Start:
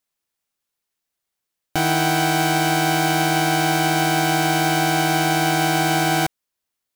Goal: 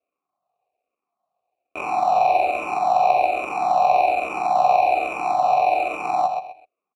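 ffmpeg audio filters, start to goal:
-filter_complex "[0:a]highpass=f=520:w=0.5412,highpass=f=520:w=1.3066,asplit=2[a][b];[b]alimiter=limit=-12.5dB:level=0:latency=1,volume=1.5dB[c];[a][c]amix=inputs=2:normalize=0,acrusher=samples=27:mix=1:aa=0.000001,asplit=3[d][e][f];[d]bandpass=f=730:t=q:w=8,volume=0dB[g];[e]bandpass=f=1.09k:t=q:w=8,volume=-6dB[h];[f]bandpass=f=2.44k:t=q:w=8,volume=-9dB[i];[g][h][i]amix=inputs=3:normalize=0,asplit=2[j][k];[k]aecho=0:1:128|256|384:0.422|0.114|0.0307[l];[j][l]amix=inputs=2:normalize=0,asplit=2[m][n];[n]afreqshift=-1.2[o];[m][o]amix=inputs=2:normalize=1,volume=7dB"

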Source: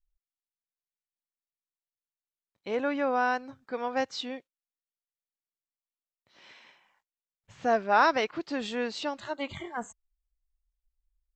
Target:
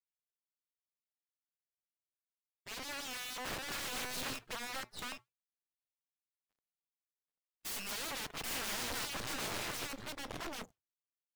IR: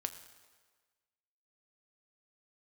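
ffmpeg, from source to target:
-filter_complex "[0:a]asettb=1/sr,asplit=3[a][b][c];[a]atrim=end=4.334[d];[b]atrim=start=4.33:end=7.91,asetpts=PTS-STARTPTS,afade=t=in:d=0.004:c=qsin,afade=t=out:st=3.576:d=0.004:c=qsin,lowpass=f=2.6k:t=q:w=0.5098,lowpass=f=2.6k:t=q:w=0.6013,lowpass=f=2.6k:t=q:w=0.9,lowpass=f=2.6k:t=q:w=2.563,afreqshift=-3000[e];[c]atrim=start=7.906[f];[d][e]acrossfade=d=0.004:c1=hsin:c2=qsin[g];[g][f]acrossfade=d=0.004:c1=qsin:c2=hsin,tiltshelf=f=800:g=9,asoftclip=type=tanh:threshold=-19dB,acompressor=threshold=-30dB:ratio=10,equalizer=f=200:w=3:g=4,acrusher=bits=5:dc=4:mix=0:aa=0.000001,aecho=1:1:789:0.631,aeval=exprs='(mod(84.1*val(0)+1,2)-1)/84.1':c=same,asplit=4[h][i][j][k];[i]adelay=161,afreqshift=-120,volume=-17.5dB[l];[j]adelay=322,afreqshift=-240,volume=-27.7dB[m];[k]adelay=483,afreqshift=-360,volume=-37.8dB[n];[h][l][m][n]amix=inputs=4:normalize=0,dynaudnorm=f=620:g=9:m=5.5dB,agate=range=-33dB:threshold=-43dB:ratio=3:detection=peak,afftdn=nr=14:nf=-58,volume=1dB"

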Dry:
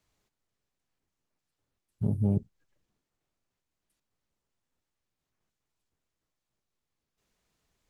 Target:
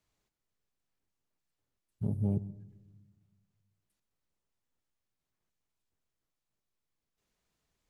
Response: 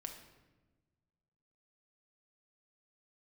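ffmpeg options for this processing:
-filter_complex "[0:a]asplit=2[a][b];[1:a]atrim=start_sample=2205,lowshelf=f=170:g=7.5,adelay=127[c];[b][c]afir=irnorm=-1:irlink=0,volume=-15dB[d];[a][d]amix=inputs=2:normalize=0,volume=-4.5dB"

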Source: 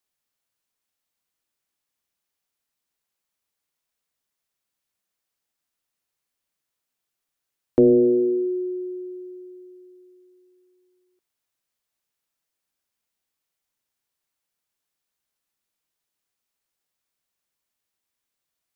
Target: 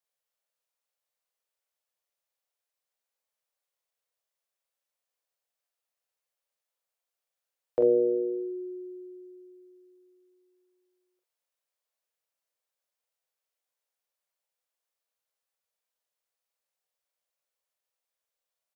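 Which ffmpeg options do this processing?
-filter_complex "[0:a]lowshelf=f=380:t=q:w=3:g=-10.5,asplit=2[a][b];[b]aecho=0:1:28|44:0.282|0.631[c];[a][c]amix=inputs=2:normalize=0,volume=-8dB"

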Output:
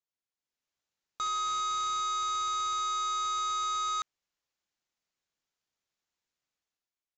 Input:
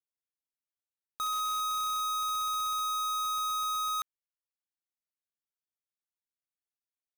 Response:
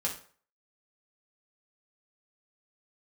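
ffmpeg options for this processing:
-af "dynaudnorm=f=100:g=11:m=10dB,aresample=16000,asoftclip=type=tanh:threshold=-31dB,aresample=44100"

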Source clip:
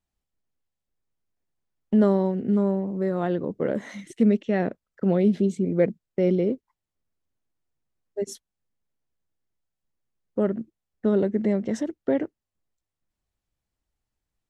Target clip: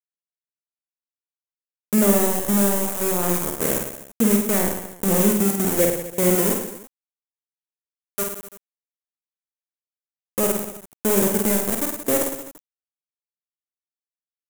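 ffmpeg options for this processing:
-af "aeval=exprs='val(0)*gte(abs(val(0)),0.0668)':c=same,aecho=1:1:50|107.5|173.6|249.7|337.1:0.631|0.398|0.251|0.158|0.1,aexciter=amount=8.7:drive=3.5:freq=6.5k"

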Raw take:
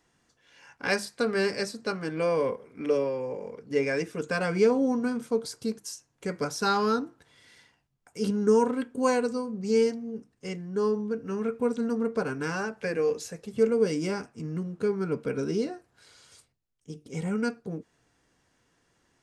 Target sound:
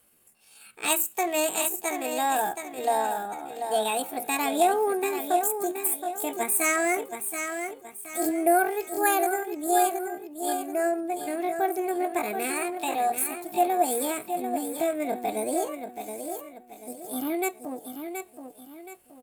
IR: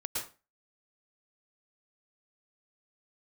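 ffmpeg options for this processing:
-af "aexciter=amount=4.9:drive=6.4:freq=5.1k,aecho=1:1:727|1454|2181|2908:0.422|0.156|0.0577|0.0214,asetrate=70004,aresample=44100,atempo=0.629961"

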